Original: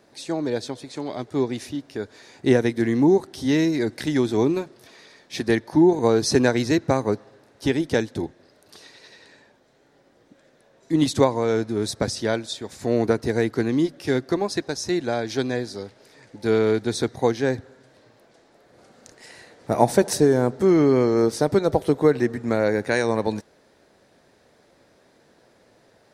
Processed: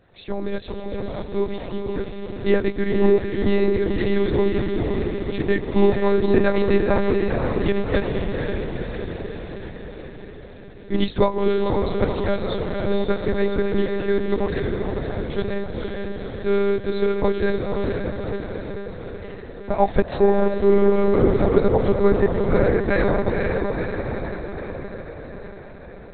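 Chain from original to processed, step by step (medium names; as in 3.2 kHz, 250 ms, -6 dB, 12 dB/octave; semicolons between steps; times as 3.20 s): 14.58–15.30 s: slow attack 659 ms; echo that smears into a reverb 500 ms, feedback 64%, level -3 dB; monotone LPC vocoder at 8 kHz 200 Hz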